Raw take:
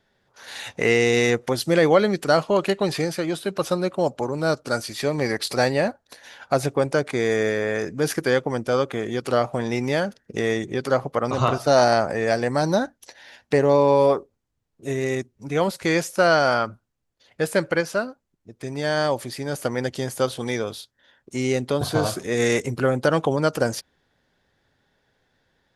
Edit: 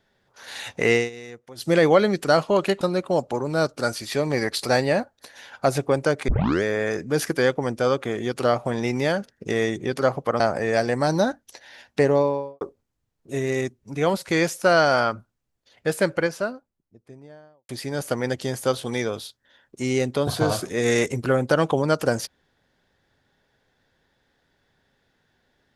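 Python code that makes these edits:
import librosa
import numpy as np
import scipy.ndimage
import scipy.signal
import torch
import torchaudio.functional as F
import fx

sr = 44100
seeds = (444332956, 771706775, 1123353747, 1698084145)

y = fx.studio_fade_out(x, sr, start_s=13.55, length_s=0.6)
y = fx.studio_fade_out(y, sr, start_s=17.46, length_s=1.77)
y = fx.edit(y, sr, fx.fade_down_up(start_s=0.95, length_s=0.75, db=-20.0, fade_s=0.15),
    fx.cut(start_s=2.81, length_s=0.88),
    fx.tape_start(start_s=7.16, length_s=0.35),
    fx.cut(start_s=11.28, length_s=0.66), tone=tone)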